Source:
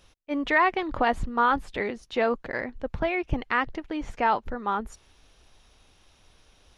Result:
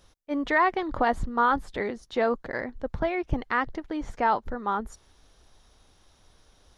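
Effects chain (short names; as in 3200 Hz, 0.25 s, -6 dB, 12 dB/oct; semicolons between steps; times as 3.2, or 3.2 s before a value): bell 2600 Hz -8 dB 0.55 oct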